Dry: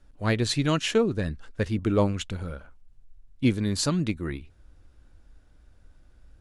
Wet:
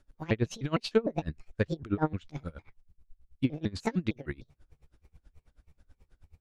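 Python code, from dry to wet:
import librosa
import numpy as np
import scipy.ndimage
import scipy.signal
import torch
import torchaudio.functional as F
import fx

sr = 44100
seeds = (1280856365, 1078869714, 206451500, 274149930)

y = fx.pitch_trill(x, sr, semitones=7.5, every_ms=152)
y = fx.env_lowpass_down(y, sr, base_hz=2300.0, full_db=-19.0)
y = y * 10.0 ** (-25 * (0.5 - 0.5 * np.cos(2.0 * np.pi * 9.3 * np.arange(len(y)) / sr)) / 20.0)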